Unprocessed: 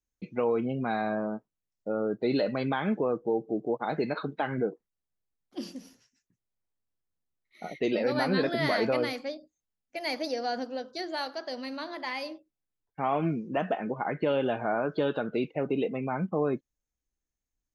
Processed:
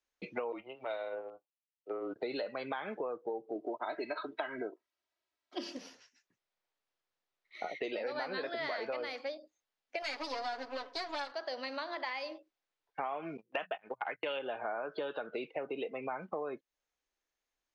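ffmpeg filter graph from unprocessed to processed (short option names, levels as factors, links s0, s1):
-filter_complex "[0:a]asettb=1/sr,asplit=3[s0][s1][s2];[s0]atrim=end=0.524[s3];[s1]atrim=start=0.52:end=2.16,asetpts=PTS-STARTPTS,afade=t=in:d=0.004:c=qsin,afade=t=out:st=1.636:d=0.004:c=qsin,agate=range=0.158:threshold=0.0316:ratio=16:release=100:detection=peak,afreqshift=-130,highpass=280,equalizer=f=1100:t=q:w=4:g=-6,equalizer=f=1600:t=q:w=4:g=-7,equalizer=f=2800:t=q:w=4:g=8,lowpass=f=5500:w=0.5412,lowpass=f=5500:w=1.3066[s4];[s2]atrim=start=2.156[s5];[s3][s4]acrossfade=d=0.004:c1=hsin:c2=qsin[s6];[s6][s5]acrossfade=d=0.004:c1=qsin:c2=hsin,asettb=1/sr,asplit=3[s7][s8][s9];[s7]atrim=end=3.554[s10];[s8]atrim=start=3.55:end=5.77,asetpts=PTS-STARTPTS,afade=t=in:d=0.004:c=qsin,afade=t=out:st=2.216:d=0.004:c=qsin,highpass=57,aecho=1:1:3.1:0.75,atrim=end_sample=97902[s11];[s9]atrim=start=5.766[s12];[s10][s11]acrossfade=d=0.004:c1=hsin:c2=qsin[s13];[s13][s12]acrossfade=d=0.004:c1=qsin:c2=hsin,asettb=1/sr,asplit=3[s14][s15][s16];[s14]atrim=end=10.024[s17];[s15]atrim=start=10.02:end=11.32,asetpts=PTS-STARTPTS,afade=t=in:d=0.004:c=qsin,afade=t=out:st=1.296:d=0.004:c=qsin,aeval=exprs='max(val(0),0)':c=same,aecho=1:1:7.1:0.87,atrim=end_sample=57330[s18];[s16]atrim=start=11.316[s19];[s17][s18]acrossfade=d=0.004:c1=hsin:c2=qsin[s20];[s20][s19]acrossfade=d=0.004:c1=qsin:c2=hsin,asettb=1/sr,asplit=3[s21][s22][s23];[s21]atrim=end=13.374[s24];[s22]atrim=start=13.37:end=14.39,asetpts=PTS-STARTPTS,afade=t=in:d=0.004:c=qsin,afade=t=out:st=1.016:d=0.004:c=qsin,agate=range=0.0178:threshold=0.0251:ratio=16:release=100:detection=peak,equalizer=f=2900:w=0.75:g=11,bandreject=f=60:t=h:w=6,bandreject=f=120:t=h:w=6,bandreject=f=180:t=h:w=6[s25];[s23]atrim=start=14.386[s26];[s24][s25]acrossfade=d=0.004:c1=hsin:c2=qsin[s27];[s27][s26]acrossfade=d=0.004:c1=qsin:c2=hsin,acrossover=split=400 5600:gain=0.1 1 0.0708[s28][s29][s30];[s28][s29][s30]amix=inputs=3:normalize=0,acompressor=threshold=0.00631:ratio=6,volume=2.51"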